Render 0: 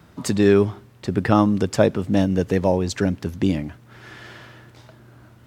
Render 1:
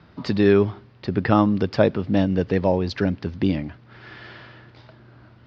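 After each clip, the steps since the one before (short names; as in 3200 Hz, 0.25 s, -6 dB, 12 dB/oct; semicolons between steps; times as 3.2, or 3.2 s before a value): elliptic low-pass 4900 Hz, stop band 60 dB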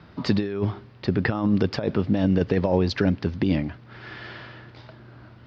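negative-ratio compressor -20 dBFS, ratio -0.5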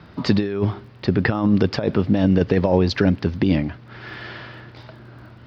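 crackle 21/s -51 dBFS; gain +4 dB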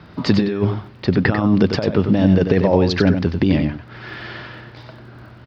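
echo 94 ms -7.5 dB; gain +2 dB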